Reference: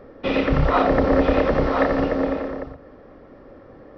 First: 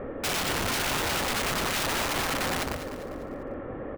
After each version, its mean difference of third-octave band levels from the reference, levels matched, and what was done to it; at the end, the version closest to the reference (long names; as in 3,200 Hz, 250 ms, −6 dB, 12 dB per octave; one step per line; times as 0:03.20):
15.0 dB: Butterworth low-pass 3,000 Hz
downward compressor 5 to 1, threshold −31 dBFS, peak gain reduction 16.5 dB
wrap-around overflow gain 31.5 dB
on a send: repeating echo 199 ms, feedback 43%, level −11 dB
on the sum: level +8 dB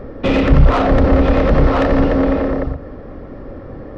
3.0 dB: high-shelf EQ 3,900 Hz −2.5 dB
downward compressor 2 to 1, threshold −20 dBFS, peak gain reduction 5 dB
soft clipping −21 dBFS, distortion −11 dB
low-shelf EQ 190 Hz +11.5 dB
level +9 dB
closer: second